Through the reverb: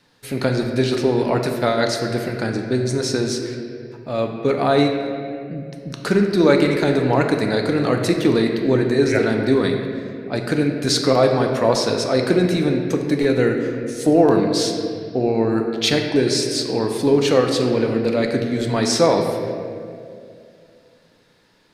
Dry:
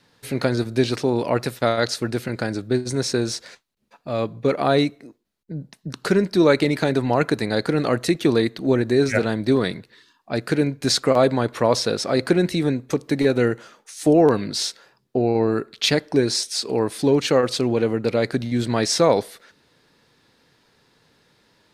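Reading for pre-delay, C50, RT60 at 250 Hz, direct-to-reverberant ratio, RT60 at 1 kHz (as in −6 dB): 3 ms, 4.5 dB, 2.8 s, 2.5 dB, 2.0 s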